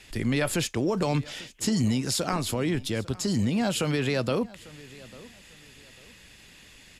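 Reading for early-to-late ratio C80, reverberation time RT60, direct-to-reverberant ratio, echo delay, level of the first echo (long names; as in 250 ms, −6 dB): no reverb audible, no reverb audible, no reverb audible, 847 ms, −21.0 dB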